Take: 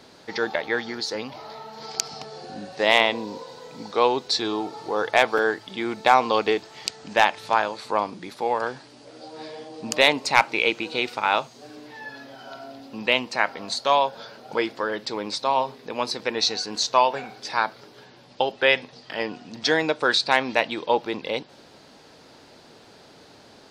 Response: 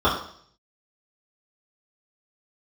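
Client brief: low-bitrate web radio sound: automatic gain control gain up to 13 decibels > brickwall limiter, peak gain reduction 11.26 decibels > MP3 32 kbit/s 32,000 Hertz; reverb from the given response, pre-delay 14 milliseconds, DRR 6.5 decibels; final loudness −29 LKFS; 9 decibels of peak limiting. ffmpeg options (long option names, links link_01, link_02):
-filter_complex "[0:a]alimiter=limit=-11.5dB:level=0:latency=1,asplit=2[link_01][link_02];[1:a]atrim=start_sample=2205,adelay=14[link_03];[link_02][link_03]afir=irnorm=-1:irlink=0,volume=-26.5dB[link_04];[link_01][link_04]amix=inputs=2:normalize=0,dynaudnorm=maxgain=13dB,alimiter=limit=-14dB:level=0:latency=1,volume=-2dB" -ar 32000 -c:a libmp3lame -b:a 32k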